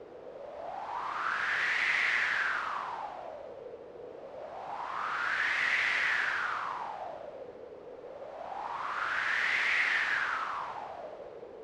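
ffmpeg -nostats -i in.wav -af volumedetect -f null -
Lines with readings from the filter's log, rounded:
mean_volume: -33.9 dB
max_volume: -16.5 dB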